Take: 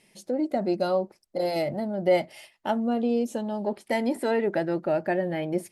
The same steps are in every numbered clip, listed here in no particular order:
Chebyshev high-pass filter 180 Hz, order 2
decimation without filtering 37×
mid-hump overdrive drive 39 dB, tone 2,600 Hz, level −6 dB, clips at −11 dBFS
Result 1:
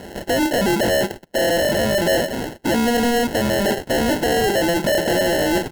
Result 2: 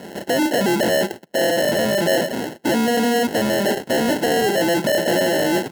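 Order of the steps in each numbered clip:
mid-hump overdrive, then Chebyshev high-pass filter, then decimation without filtering
mid-hump overdrive, then decimation without filtering, then Chebyshev high-pass filter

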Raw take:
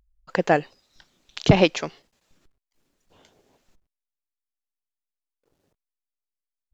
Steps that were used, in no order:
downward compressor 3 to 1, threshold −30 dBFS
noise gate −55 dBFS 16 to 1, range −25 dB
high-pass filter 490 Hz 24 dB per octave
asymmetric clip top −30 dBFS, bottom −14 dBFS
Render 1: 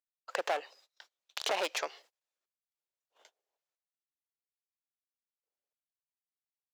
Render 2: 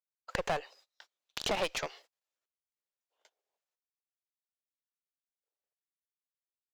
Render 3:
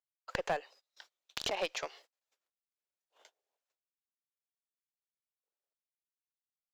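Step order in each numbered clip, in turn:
asymmetric clip, then noise gate, then high-pass filter, then downward compressor
high-pass filter, then asymmetric clip, then noise gate, then downward compressor
downward compressor, then noise gate, then high-pass filter, then asymmetric clip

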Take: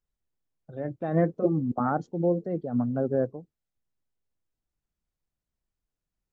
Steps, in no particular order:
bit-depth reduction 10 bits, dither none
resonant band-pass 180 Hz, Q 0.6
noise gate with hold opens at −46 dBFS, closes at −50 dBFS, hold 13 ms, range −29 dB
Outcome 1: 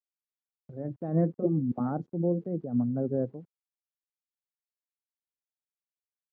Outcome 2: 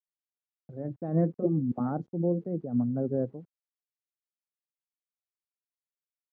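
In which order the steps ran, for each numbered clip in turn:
bit-depth reduction, then resonant band-pass, then noise gate with hold
noise gate with hold, then bit-depth reduction, then resonant band-pass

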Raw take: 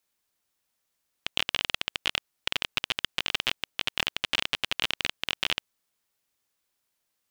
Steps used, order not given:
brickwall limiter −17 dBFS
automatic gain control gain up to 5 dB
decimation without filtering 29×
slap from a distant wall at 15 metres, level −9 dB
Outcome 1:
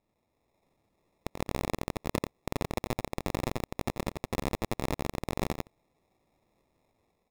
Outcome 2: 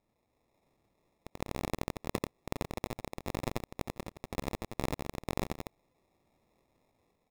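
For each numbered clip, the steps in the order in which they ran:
decimation without filtering, then automatic gain control, then slap from a distant wall, then brickwall limiter
automatic gain control, then slap from a distant wall, then brickwall limiter, then decimation without filtering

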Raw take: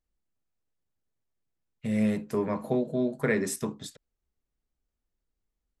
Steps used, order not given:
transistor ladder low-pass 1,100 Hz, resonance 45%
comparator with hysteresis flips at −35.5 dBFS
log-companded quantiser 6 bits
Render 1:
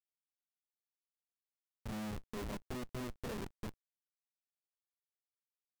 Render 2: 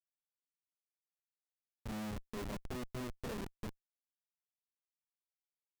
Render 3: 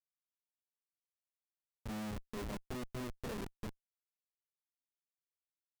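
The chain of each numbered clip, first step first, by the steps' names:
transistor ladder low-pass, then comparator with hysteresis, then log-companded quantiser
log-companded quantiser, then transistor ladder low-pass, then comparator with hysteresis
transistor ladder low-pass, then log-companded quantiser, then comparator with hysteresis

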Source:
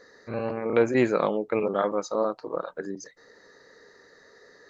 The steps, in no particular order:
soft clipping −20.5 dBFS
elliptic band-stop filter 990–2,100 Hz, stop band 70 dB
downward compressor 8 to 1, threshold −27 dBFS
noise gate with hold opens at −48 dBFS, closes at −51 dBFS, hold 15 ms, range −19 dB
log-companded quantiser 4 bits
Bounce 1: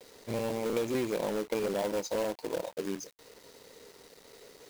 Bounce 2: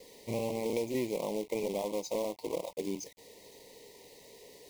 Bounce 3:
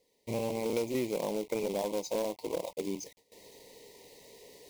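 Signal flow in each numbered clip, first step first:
noise gate with hold, then elliptic band-stop filter, then soft clipping, then log-companded quantiser, then downward compressor
log-companded quantiser, then downward compressor, then soft clipping, then elliptic band-stop filter, then noise gate with hold
log-companded quantiser, then noise gate with hold, then elliptic band-stop filter, then downward compressor, then soft clipping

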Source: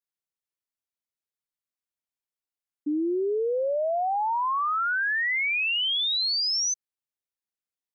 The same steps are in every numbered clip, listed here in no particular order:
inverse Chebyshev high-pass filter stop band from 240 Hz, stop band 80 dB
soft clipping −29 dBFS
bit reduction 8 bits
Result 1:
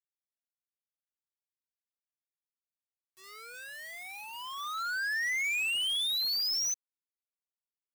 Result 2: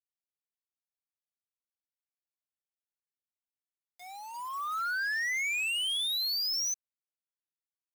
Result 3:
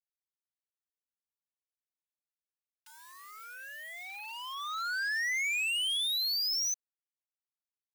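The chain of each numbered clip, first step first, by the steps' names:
soft clipping, then inverse Chebyshev high-pass filter, then bit reduction
inverse Chebyshev high-pass filter, then soft clipping, then bit reduction
soft clipping, then bit reduction, then inverse Chebyshev high-pass filter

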